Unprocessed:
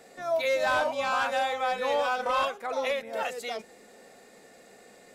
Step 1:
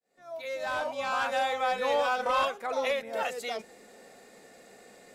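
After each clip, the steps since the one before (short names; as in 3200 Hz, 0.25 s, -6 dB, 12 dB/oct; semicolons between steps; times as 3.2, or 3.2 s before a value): opening faded in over 1.53 s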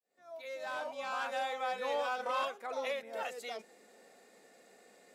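HPF 200 Hz 12 dB/oct; gain -7.5 dB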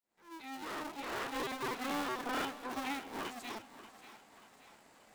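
cycle switcher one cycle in 2, inverted; split-band echo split 670 Hz, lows 0.284 s, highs 0.585 s, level -14 dB; gain -2.5 dB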